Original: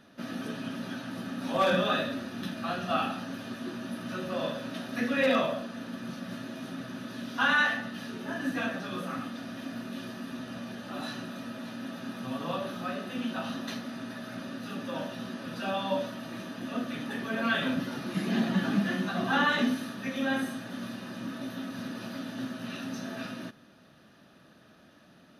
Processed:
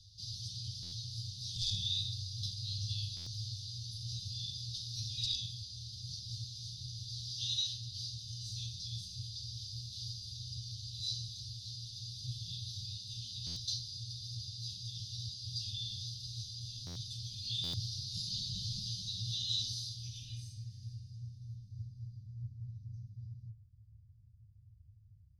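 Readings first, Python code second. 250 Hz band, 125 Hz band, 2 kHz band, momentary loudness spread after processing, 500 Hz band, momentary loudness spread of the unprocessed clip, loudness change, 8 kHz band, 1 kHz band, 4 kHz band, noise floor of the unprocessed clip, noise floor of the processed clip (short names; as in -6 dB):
-26.0 dB, +0.5 dB, -35.0 dB, 12 LU, under -35 dB, 13 LU, -7.0 dB, +4.5 dB, under -40 dB, +2.5 dB, -57 dBFS, -60 dBFS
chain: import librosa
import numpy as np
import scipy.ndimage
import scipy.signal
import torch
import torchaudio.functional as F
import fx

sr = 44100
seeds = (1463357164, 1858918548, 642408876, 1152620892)

y = scipy.signal.sosfilt(scipy.signal.cheby1(5, 1.0, [110.0, 4800.0], 'bandstop', fs=sr, output='sos'), x)
y = fx.filter_sweep_lowpass(y, sr, from_hz=3600.0, to_hz=480.0, start_s=19.89, end_s=22.51, q=4.1)
y = fx.buffer_glitch(y, sr, at_s=(0.82, 3.16, 13.46, 16.86, 17.63), block=512, repeats=8)
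y = F.gain(torch.from_numpy(y), 14.5).numpy()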